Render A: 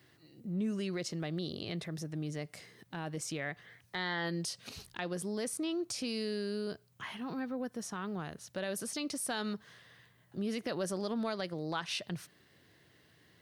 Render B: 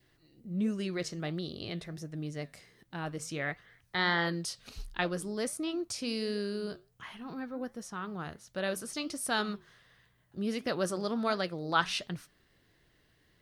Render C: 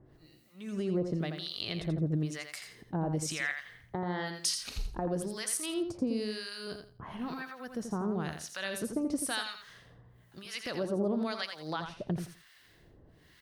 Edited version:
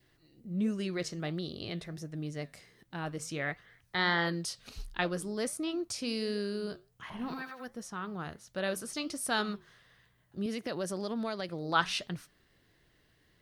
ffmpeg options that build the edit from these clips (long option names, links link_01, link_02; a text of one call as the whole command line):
ffmpeg -i take0.wav -i take1.wav -i take2.wav -filter_complex "[1:a]asplit=3[link_01][link_02][link_03];[link_01]atrim=end=7.102[link_04];[2:a]atrim=start=7.098:end=7.682[link_05];[link_02]atrim=start=7.678:end=10.462[link_06];[0:a]atrim=start=10.458:end=11.492[link_07];[link_03]atrim=start=11.488[link_08];[link_04][link_05]acrossfade=duration=0.004:curve1=hsin:curve2=hsin[link_09];[link_09][link_06]acrossfade=duration=0.004:curve1=hsin:curve2=hsin[link_10];[link_10][link_07]acrossfade=duration=0.004:curve1=hsin:curve2=hsin[link_11];[link_11][link_08]acrossfade=duration=0.004:curve1=hsin:curve2=hsin" out.wav